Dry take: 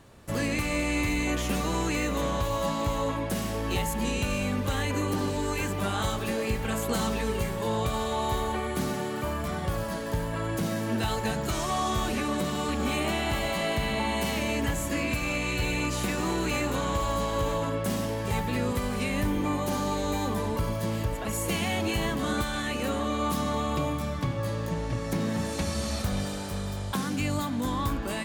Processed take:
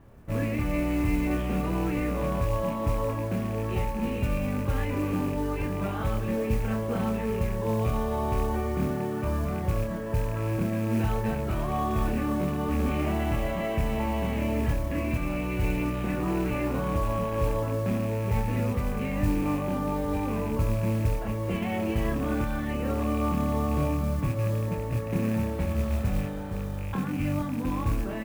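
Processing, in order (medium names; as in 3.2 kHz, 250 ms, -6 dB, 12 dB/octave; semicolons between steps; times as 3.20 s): rattle on loud lows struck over -29 dBFS, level -25 dBFS; low-pass 2.8 kHz 24 dB/octave; tilt EQ -2 dB/octave; doubling 27 ms -4 dB; modulation noise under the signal 24 dB; trim -5 dB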